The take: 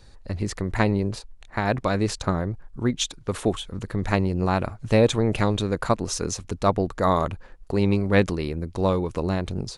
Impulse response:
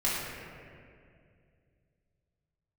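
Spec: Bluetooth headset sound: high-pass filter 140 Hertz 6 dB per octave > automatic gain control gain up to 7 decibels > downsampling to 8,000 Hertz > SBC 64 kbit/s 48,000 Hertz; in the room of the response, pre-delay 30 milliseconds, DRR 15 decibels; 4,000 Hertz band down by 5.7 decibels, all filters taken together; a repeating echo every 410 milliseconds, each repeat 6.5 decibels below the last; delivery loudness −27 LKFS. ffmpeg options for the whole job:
-filter_complex "[0:a]equalizer=frequency=4000:width_type=o:gain=-7,aecho=1:1:410|820|1230|1640|2050|2460:0.473|0.222|0.105|0.0491|0.0231|0.0109,asplit=2[link_01][link_02];[1:a]atrim=start_sample=2205,adelay=30[link_03];[link_02][link_03]afir=irnorm=-1:irlink=0,volume=-25dB[link_04];[link_01][link_04]amix=inputs=2:normalize=0,highpass=frequency=140:poles=1,dynaudnorm=maxgain=7dB,aresample=8000,aresample=44100,volume=-1.5dB" -ar 48000 -c:a sbc -b:a 64k

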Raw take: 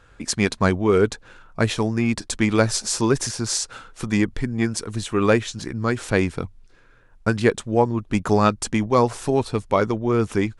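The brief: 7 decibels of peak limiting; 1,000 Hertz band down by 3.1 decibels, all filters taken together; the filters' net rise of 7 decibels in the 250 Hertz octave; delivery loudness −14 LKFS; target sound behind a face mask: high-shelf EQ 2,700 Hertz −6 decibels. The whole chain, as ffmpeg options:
ffmpeg -i in.wav -af "equalizer=frequency=250:width_type=o:gain=9,equalizer=frequency=1000:width_type=o:gain=-3.5,alimiter=limit=-7.5dB:level=0:latency=1,highshelf=frequency=2700:gain=-6,volume=6dB" out.wav

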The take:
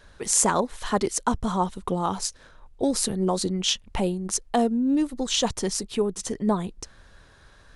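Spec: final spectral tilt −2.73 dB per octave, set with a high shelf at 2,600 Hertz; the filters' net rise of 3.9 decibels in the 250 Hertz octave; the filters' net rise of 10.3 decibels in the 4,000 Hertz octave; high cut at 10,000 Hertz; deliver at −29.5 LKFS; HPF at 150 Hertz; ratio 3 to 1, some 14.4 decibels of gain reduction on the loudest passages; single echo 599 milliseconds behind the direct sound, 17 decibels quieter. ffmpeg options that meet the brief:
ffmpeg -i in.wav -af "highpass=150,lowpass=10000,equalizer=frequency=250:width_type=o:gain=5.5,highshelf=frequency=2600:gain=8.5,equalizer=frequency=4000:width_type=o:gain=6,acompressor=threshold=-30dB:ratio=3,aecho=1:1:599:0.141,volume=0.5dB" out.wav

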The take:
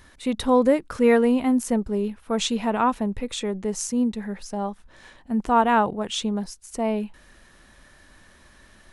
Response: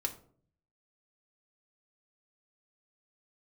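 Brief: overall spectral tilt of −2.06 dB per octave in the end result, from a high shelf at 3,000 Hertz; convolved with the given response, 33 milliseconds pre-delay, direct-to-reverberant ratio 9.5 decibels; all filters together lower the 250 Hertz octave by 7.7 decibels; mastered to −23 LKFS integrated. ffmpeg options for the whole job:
-filter_complex "[0:a]equalizer=frequency=250:width_type=o:gain=-8.5,highshelf=frequency=3000:gain=8.5,asplit=2[link_01][link_02];[1:a]atrim=start_sample=2205,adelay=33[link_03];[link_02][link_03]afir=irnorm=-1:irlink=0,volume=-11.5dB[link_04];[link_01][link_04]amix=inputs=2:normalize=0,volume=1.5dB"

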